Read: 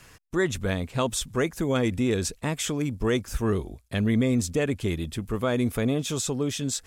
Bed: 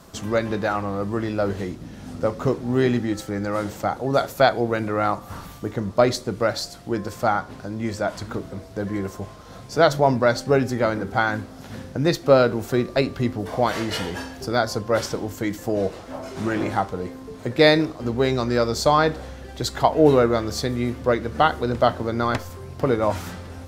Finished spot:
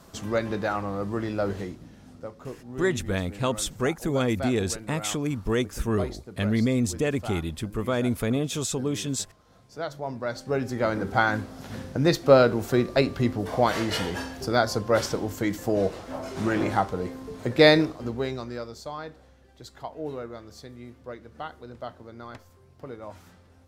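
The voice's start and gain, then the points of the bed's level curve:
2.45 s, -0.5 dB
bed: 1.56 s -4 dB
2.32 s -16.5 dB
9.97 s -16.5 dB
11.05 s -1 dB
17.79 s -1 dB
18.85 s -19 dB

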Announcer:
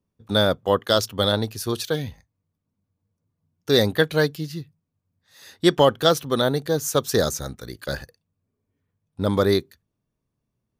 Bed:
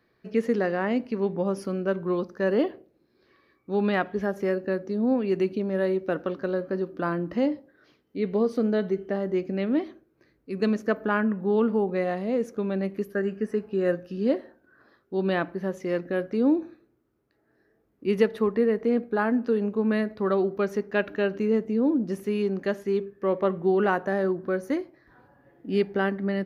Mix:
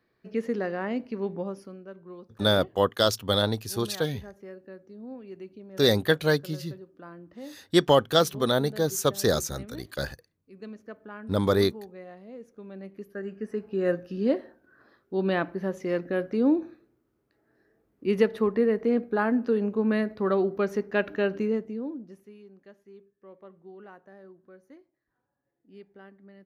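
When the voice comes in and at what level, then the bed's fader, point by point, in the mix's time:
2.10 s, -3.0 dB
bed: 1.37 s -4.5 dB
1.86 s -17.5 dB
12.47 s -17.5 dB
13.91 s -0.5 dB
21.39 s -0.5 dB
22.42 s -24.5 dB

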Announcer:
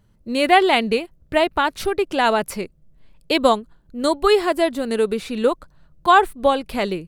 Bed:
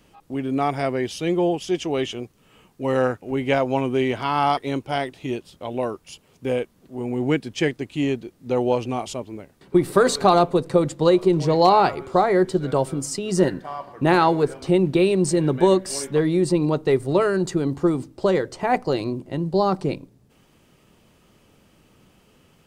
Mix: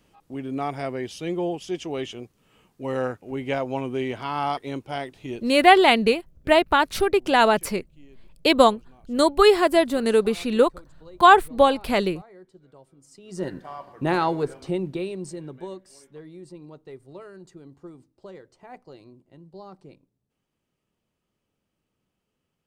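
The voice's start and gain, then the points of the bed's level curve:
5.15 s, +0.5 dB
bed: 5.43 s -6 dB
5.87 s -30 dB
12.96 s -30 dB
13.57 s -5.5 dB
14.52 s -5.5 dB
15.92 s -23 dB

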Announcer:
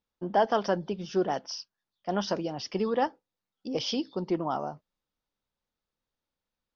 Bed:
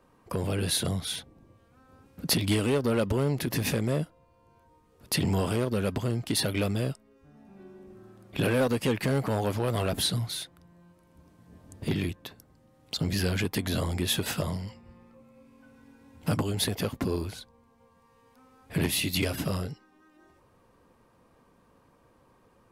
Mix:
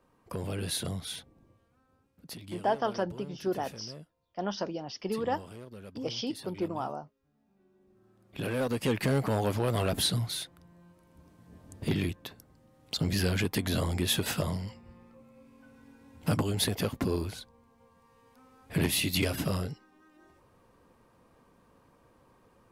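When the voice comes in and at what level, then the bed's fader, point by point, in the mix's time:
2.30 s, -4.0 dB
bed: 1.50 s -5.5 dB
2.29 s -18.5 dB
7.66 s -18.5 dB
8.98 s -0.5 dB

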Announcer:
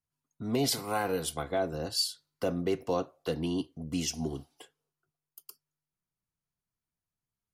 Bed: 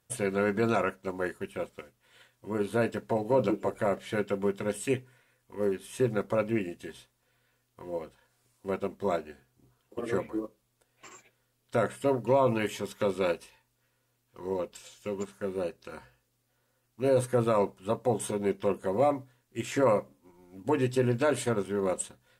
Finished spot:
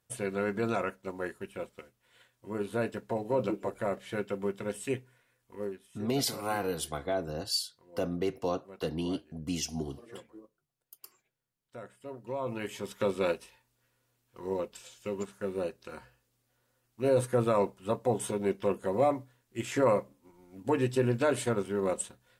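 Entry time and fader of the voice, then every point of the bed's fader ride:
5.55 s, -1.5 dB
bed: 5.55 s -4 dB
5.94 s -18 dB
12.01 s -18 dB
12.95 s -1 dB

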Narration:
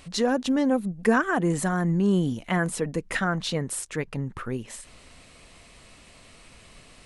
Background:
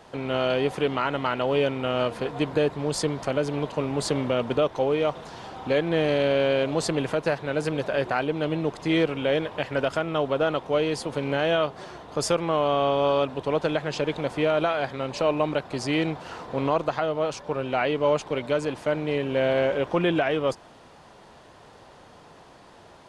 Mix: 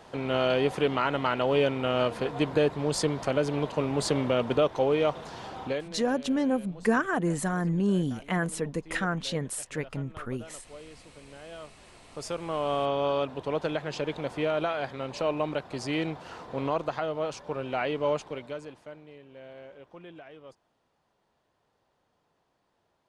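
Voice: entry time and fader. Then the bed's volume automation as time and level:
5.80 s, -3.5 dB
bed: 5.63 s -1 dB
5.99 s -23 dB
11.41 s -23 dB
12.72 s -5 dB
18.12 s -5 dB
19.16 s -24 dB

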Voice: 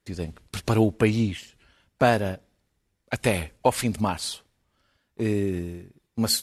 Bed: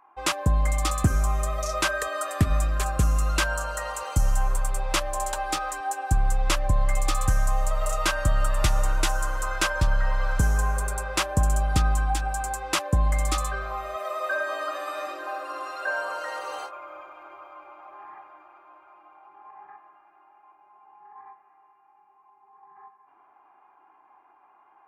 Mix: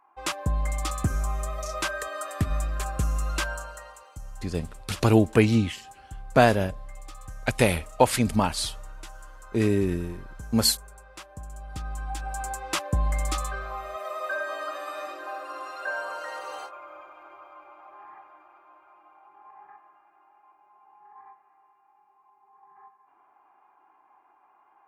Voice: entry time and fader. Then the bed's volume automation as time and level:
4.35 s, +2.0 dB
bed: 3.48 s -4.5 dB
4.13 s -19 dB
11.50 s -19 dB
12.43 s -3 dB

